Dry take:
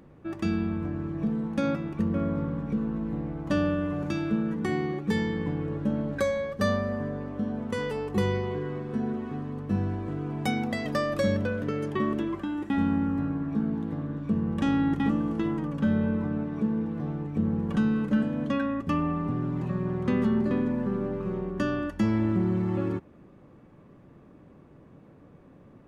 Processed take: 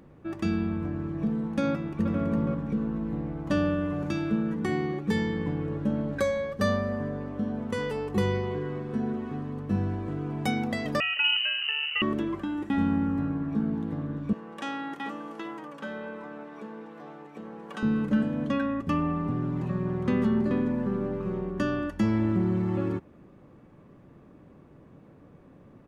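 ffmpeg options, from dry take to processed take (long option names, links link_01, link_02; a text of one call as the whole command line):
ffmpeg -i in.wav -filter_complex "[0:a]asplit=2[link_01][link_02];[link_02]afade=type=in:start_time=1.72:duration=0.01,afade=type=out:start_time=2.21:duration=0.01,aecho=0:1:330|660|990:0.630957|0.0946436|0.0141965[link_03];[link_01][link_03]amix=inputs=2:normalize=0,asettb=1/sr,asplit=3[link_04][link_05][link_06];[link_04]atrim=end=11.004[link_07];[link_05]atrim=start=11:end=12.02,asetpts=PTS-STARTPTS,afade=type=in:duration=0.004:curve=qsin,afade=type=out:start_time=1.016:duration=0.004:curve=qsin,lowpass=frequency=2600:width_type=q:width=0.5098,lowpass=frequency=2600:width_type=q:width=0.6013,lowpass=frequency=2600:width_type=q:width=0.9,lowpass=frequency=2600:width_type=q:width=2.563,afreqshift=-3100[link_08];[link_06]atrim=start=12.016[link_09];[link_07][link_08]acrossfade=duration=0.004:curve1=hsin:curve2=qsin[link_10];[link_10][link_09]acrossfade=duration=0.004:curve1=qsin:curve2=hsin,asettb=1/sr,asplit=3[link_11][link_12][link_13];[link_11]atrim=end=14.334[link_14];[link_12]atrim=start=14.33:end=17.83,asetpts=PTS-STARTPTS,afade=type=in:duration=0.004:curve=qsin,afade=type=out:start_time=3.496:duration=0.004:curve=qsin,highpass=570[link_15];[link_13]atrim=start=17.826[link_16];[link_14][link_15]acrossfade=duration=0.004:curve1=hsin:curve2=qsin[link_17];[link_17][link_16]acrossfade=duration=0.004:curve1=qsin:curve2=hsin" out.wav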